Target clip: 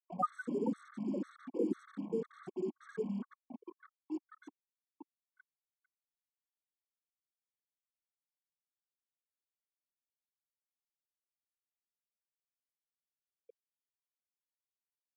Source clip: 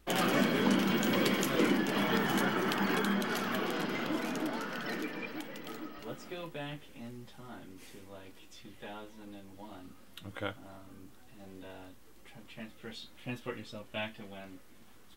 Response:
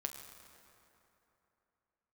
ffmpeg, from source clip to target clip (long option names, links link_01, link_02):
-filter_complex "[0:a]flanger=delay=16:depth=3.6:speed=0.35,afftfilt=real='re*gte(hypot(re,im),0.112)':imag='im*gte(hypot(re,im),0.112)':win_size=1024:overlap=0.75,acrusher=bits=7:mix=0:aa=0.5,acrossover=split=210 2000:gain=0.1 1 0.158[link_01][link_02][link_03];[link_01][link_02][link_03]amix=inputs=3:normalize=0,aresample=32000,aresample=44100,equalizer=frequency=315:width_type=o:width=0.33:gain=-3,equalizer=frequency=1250:width_type=o:width=0.33:gain=7,equalizer=frequency=2500:width_type=o:width=0.33:gain=-5,equalizer=frequency=8000:width_type=o:width=0.33:gain=12,equalizer=frequency=12500:width_type=o:width=0.33:gain=-7,afftfilt=real='re*gt(sin(2*PI*2*pts/sr)*(1-2*mod(floor(b*sr/1024/1100),2)),0)':imag='im*gt(sin(2*PI*2*pts/sr)*(1-2*mod(floor(b*sr/1024/1100),2)),0)':win_size=1024:overlap=0.75,volume=4dB"